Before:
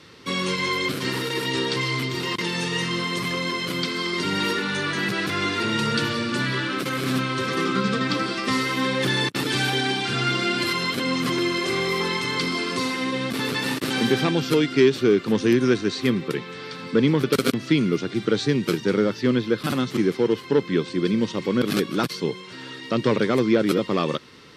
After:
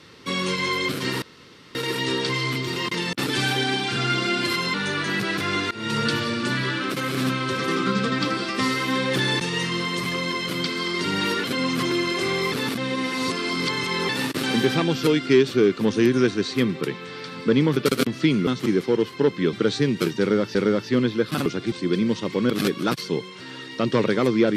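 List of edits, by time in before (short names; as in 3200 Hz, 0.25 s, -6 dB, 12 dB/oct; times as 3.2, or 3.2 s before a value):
1.22 insert room tone 0.53 s
2.6–4.63 swap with 9.3–10.91
5.6–5.86 fade in, from -21 dB
11.99–13.56 reverse
17.94–18.2 swap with 19.78–20.84
18.87–19.22 loop, 2 plays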